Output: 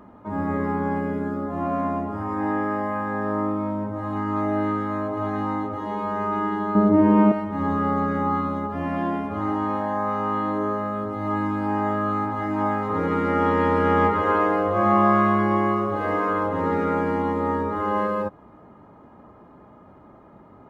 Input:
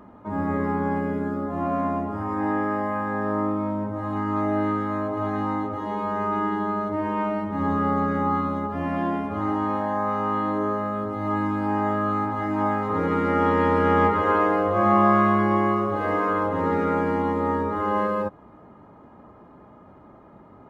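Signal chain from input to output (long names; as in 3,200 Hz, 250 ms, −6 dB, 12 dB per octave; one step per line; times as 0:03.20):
0:06.75–0:07.32: parametric band 220 Hz +14 dB 2.7 octaves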